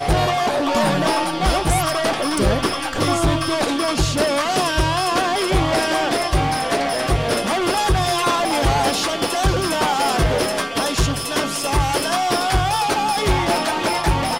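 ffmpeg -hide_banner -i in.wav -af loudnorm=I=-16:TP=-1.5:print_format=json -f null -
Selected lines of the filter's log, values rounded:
"input_i" : "-19.2",
"input_tp" : "-9.6",
"input_lra" : "0.6",
"input_thresh" : "-29.2",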